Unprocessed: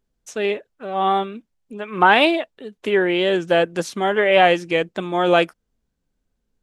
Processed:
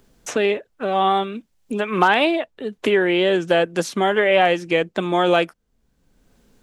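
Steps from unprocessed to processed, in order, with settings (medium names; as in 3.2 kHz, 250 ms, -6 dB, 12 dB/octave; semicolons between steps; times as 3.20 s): hard clipper -3 dBFS, distortion -40 dB; three bands compressed up and down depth 70%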